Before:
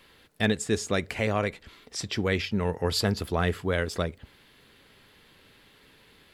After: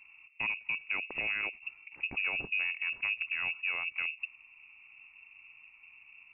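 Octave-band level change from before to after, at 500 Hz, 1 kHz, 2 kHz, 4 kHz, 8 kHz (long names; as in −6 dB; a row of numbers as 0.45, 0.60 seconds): −24.5 dB, −13.0 dB, +2.0 dB, −9.0 dB, below −40 dB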